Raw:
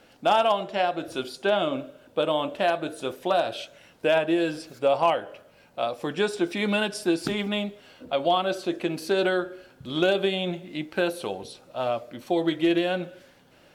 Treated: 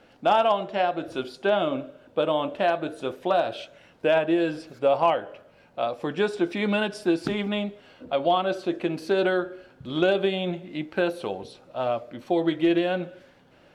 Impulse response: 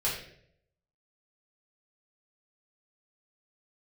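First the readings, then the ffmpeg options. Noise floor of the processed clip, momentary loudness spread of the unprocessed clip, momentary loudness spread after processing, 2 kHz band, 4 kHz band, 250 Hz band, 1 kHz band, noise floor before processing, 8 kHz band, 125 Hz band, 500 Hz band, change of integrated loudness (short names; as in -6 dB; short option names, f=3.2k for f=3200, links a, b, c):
-56 dBFS, 11 LU, 11 LU, -0.5 dB, -3.0 dB, +1.0 dB, +0.5 dB, -56 dBFS, n/a, +1.0 dB, +1.0 dB, +0.5 dB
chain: -af "lowpass=f=2.7k:p=1,volume=1dB"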